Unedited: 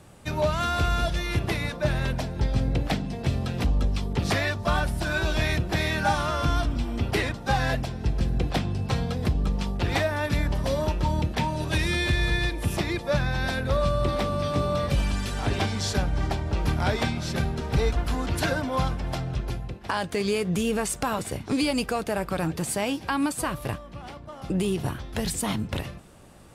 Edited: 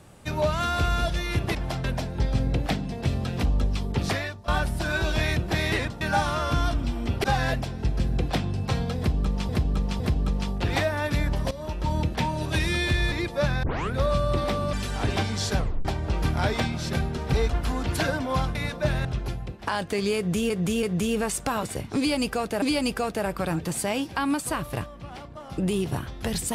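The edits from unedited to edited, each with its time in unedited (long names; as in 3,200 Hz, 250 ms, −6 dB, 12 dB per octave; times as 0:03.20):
0:01.55–0:02.05: swap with 0:18.98–0:19.27
0:04.22–0:04.69: fade out linear, to −20 dB
0:07.16–0:07.45: move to 0:05.93
0:09.19–0:09.70: repeat, 3 plays
0:10.70–0:11.16: fade in, from −16 dB
0:12.31–0:12.83: remove
0:13.34: tape start 0.30 s
0:14.44–0:15.16: remove
0:16.01: tape stop 0.27 s
0:20.39–0:20.72: repeat, 3 plays
0:21.54–0:22.18: repeat, 2 plays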